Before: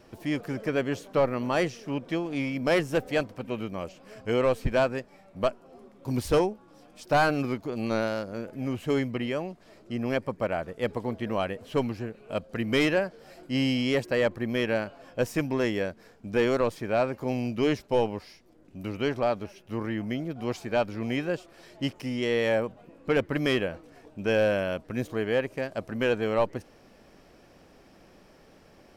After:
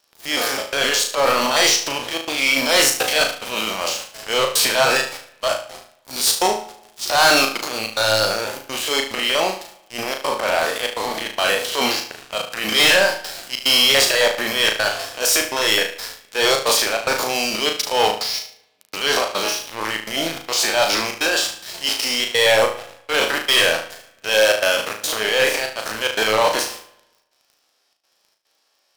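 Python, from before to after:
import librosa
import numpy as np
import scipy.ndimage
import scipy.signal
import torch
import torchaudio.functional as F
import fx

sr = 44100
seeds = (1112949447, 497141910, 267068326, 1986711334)

y = fx.spec_steps(x, sr, hold_ms=50)
y = scipy.signal.sosfilt(scipy.signal.butter(2, 940.0, 'highpass', fs=sr, output='sos'), y)
y = fx.high_shelf_res(y, sr, hz=2900.0, db=7.5, q=1.5)
y = fx.transient(y, sr, attack_db=-11, sustain_db=8)
y = fx.step_gate(y, sr, bpm=145, pattern='xxxxxx.xxx.', floor_db=-24.0, edge_ms=4.5)
y = fx.leveller(y, sr, passes=5)
y = fx.room_flutter(y, sr, wall_m=6.3, rt60_s=0.41)
y = fx.rev_spring(y, sr, rt60_s=1.0, pass_ms=(46, 59), chirp_ms=50, drr_db=17.5)
y = y * 10.0 ** (2.5 / 20.0)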